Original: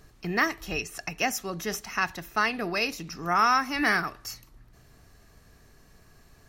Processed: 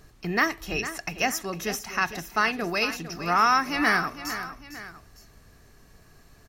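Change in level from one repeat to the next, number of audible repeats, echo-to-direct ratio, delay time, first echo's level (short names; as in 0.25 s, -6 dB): -6.5 dB, 2, -11.0 dB, 0.454 s, -12.0 dB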